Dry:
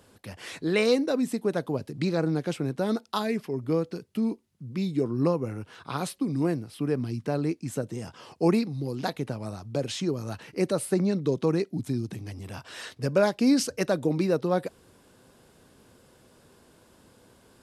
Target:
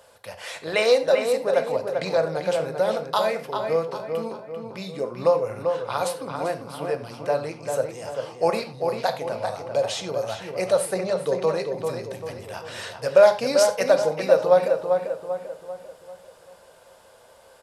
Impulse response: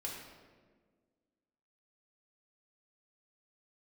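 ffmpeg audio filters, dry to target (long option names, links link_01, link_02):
-filter_complex "[0:a]lowshelf=frequency=430:width_type=q:width=3:gain=-10,asplit=2[link_01][link_02];[link_02]adelay=393,lowpass=frequency=2600:poles=1,volume=-5dB,asplit=2[link_03][link_04];[link_04]adelay=393,lowpass=frequency=2600:poles=1,volume=0.46,asplit=2[link_05][link_06];[link_06]adelay=393,lowpass=frequency=2600:poles=1,volume=0.46,asplit=2[link_07][link_08];[link_08]adelay=393,lowpass=frequency=2600:poles=1,volume=0.46,asplit=2[link_09][link_10];[link_10]adelay=393,lowpass=frequency=2600:poles=1,volume=0.46,asplit=2[link_11][link_12];[link_12]adelay=393,lowpass=frequency=2600:poles=1,volume=0.46[link_13];[link_01][link_03][link_05][link_07][link_09][link_11][link_13]amix=inputs=7:normalize=0,asplit=2[link_14][link_15];[1:a]atrim=start_sample=2205,afade=type=out:start_time=0.15:duration=0.01,atrim=end_sample=7056[link_16];[link_15][link_16]afir=irnorm=-1:irlink=0,volume=-0.5dB[link_17];[link_14][link_17]amix=inputs=2:normalize=0"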